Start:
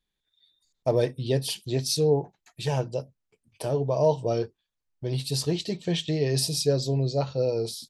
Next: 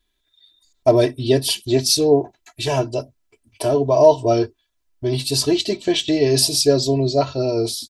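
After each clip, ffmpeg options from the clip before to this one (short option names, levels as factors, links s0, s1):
-af "aecho=1:1:3:0.9,volume=2.37"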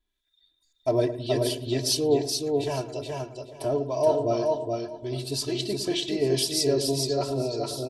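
-filter_complex "[0:a]asplit=2[s0][s1];[s1]adelay=108,lowpass=f=1000:p=1,volume=0.316,asplit=2[s2][s3];[s3]adelay=108,lowpass=f=1000:p=1,volume=0.51,asplit=2[s4][s5];[s5]adelay=108,lowpass=f=1000:p=1,volume=0.51,asplit=2[s6][s7];[s7]adelay=108,lowpass=f=1000:p=1,volume=0.51,asplit=2[s8][s9];[s9]adelay=108,lowpass=f=1000:p=1,volume=0.51,asplit=2[s10][s11];[s11]adelay=108,lowpass=f=1000:p=1,volume=0.51[s12];[s2][s4][s6][s8][s10][s12]amix=inputs=6:normalize=0[s13];[s0][s13]amix=inputs=2:normalize=0,acrossover=split=1400[s14][s15];[s14]aeval=exprs='val(0)*(1-0.5/2+0.5/2*cos(2*PI*1.9*n/s))':c=same[s16];[s15]aeval=exprs='val(0)*(1-0.5/2-0.5/2*cos(2*PI*1.9*n/s))':c=same[s17];[s16][s17]amix=inputs=2:normalize=0,asplit=2[s18][s19];[s19]aecho=0:1:425|850|1275:0.668|0.12|0.0217[s20];[s18][s20]amix=inputs=2:normalize=0,volume=0.422"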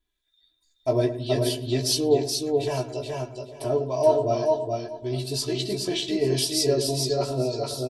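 -filter_complex "[0:a]asplit=2[s0][s1];[s1]adelay=16,volume=0.562[s2];[s0][s2]amix=inputs=2:normalize=0"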